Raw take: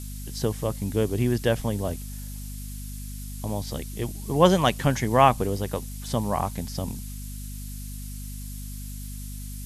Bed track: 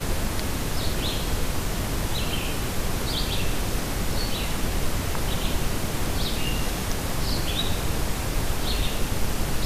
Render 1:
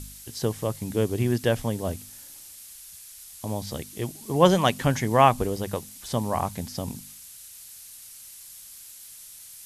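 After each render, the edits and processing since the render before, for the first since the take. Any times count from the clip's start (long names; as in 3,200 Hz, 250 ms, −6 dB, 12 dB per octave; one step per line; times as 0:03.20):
hum removal 50 Hz, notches 5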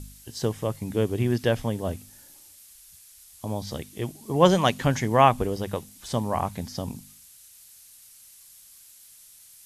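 noise reduction from a noise print 6 dB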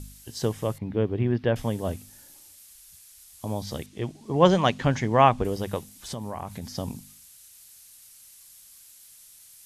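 0:00.78–0:01.56: high-frequency loss of the air 340 metres
0:03.86–0:05.45: high-frequency loss of the air 82 metres
0:05.95–0:06.78: downward compressor 5 to 1, threshold −30 dBFS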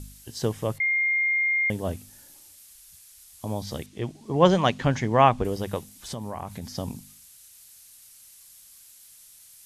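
0:00.80–0:01.70: beep over 2,120 Hz −20.5 dBFS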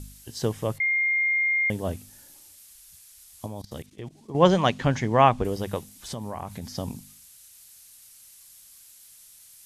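0:01.17–0:01.70: hollow resonant body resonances 240/1,200 Hz, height 12 dB
0:03.46–0:04.35: output level in coarse steps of 18 dB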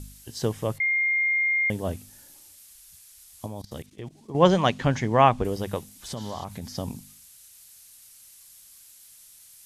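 0:06.19–0:06.42: healed spectral selection 1,300–7,800 Hz before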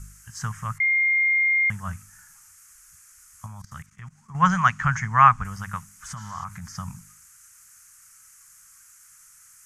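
drawn EQ curve 180 Hz 0 dB, 320 Hz −29 dB, 510 Hz −27 dB, 1,300 Hz +14 dB, 2,300 Hz +1 dB, 3,800 Hz −16 dB, 6,500 Hz +5 dB, 12,000 Hz −6 dB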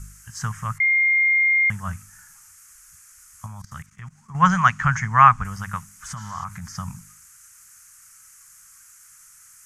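level +2.5 dB
brickwall limiter −1 dBFS, peak gain reduction 0.5 dB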